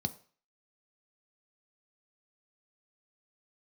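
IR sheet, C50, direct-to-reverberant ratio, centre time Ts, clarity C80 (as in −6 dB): 17.5 dB, 9.0 dB, 4 ms, 21.0 dB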